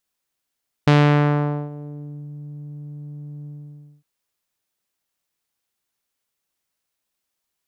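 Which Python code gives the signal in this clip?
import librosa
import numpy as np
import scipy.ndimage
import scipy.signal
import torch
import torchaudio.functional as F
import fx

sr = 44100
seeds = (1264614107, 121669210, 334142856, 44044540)

y = fx.sub_voice(sr, note=50, wave='saw', cutoff_hz=180.0, q=0.91, env_oct=4.5, env_s=1.41, attack_ms=5.7, decay_s=0.82, sustain_db=-21, release_s=0.57, note_s=2.59, slope=12)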